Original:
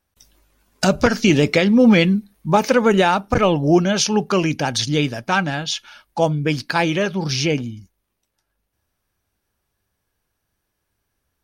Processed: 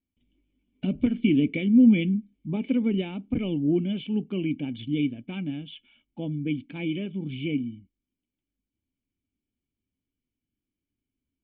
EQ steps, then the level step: vocal tract filter i; 0.0 dB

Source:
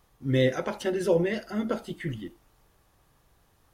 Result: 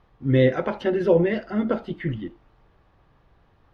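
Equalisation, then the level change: air absorption 310 m; +6.0 dB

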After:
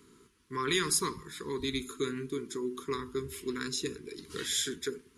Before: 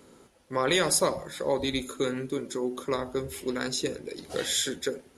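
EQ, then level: elliptic band-stop 430–1000 Hz, stop band 40 dB; -3.5 dB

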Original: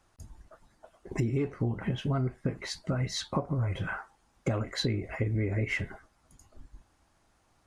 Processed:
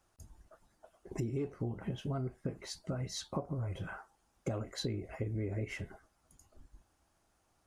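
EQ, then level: graphic EQ 125/250/500/1000/2000/4000/8000 Hz -5/-6/-4/-6/-7/-6/-4 dB; dynamic EQ 1900 Hz, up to -5 dB, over -57 dBFS, Q 0.93; low shelf 84 Hz -10.5 dB; +1.5 dB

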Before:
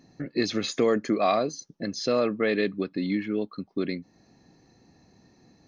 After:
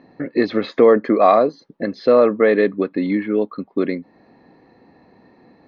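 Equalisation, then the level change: graphic EQ 250/500/1000/2000/4000 Hz +7/+11/+11/+10/+9 dB; dynamic EQ 2600 Hz, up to -6 dB, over -33 dBFS, Q 1.8; air absorption 360 m; -1.0 dB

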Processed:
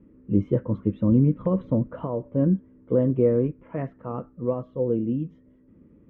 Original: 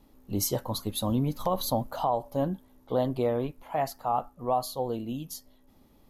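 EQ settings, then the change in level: speaker cabinet 110–2700 Hz, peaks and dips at 190 Hz +5 dB, 330 Hz +6 dB, 490 Hz +9 dB, 830 Hz +6 dB; tilt -3.5 dB/oct; fixed phaser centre 1900 Hz, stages 4; 0.0 dB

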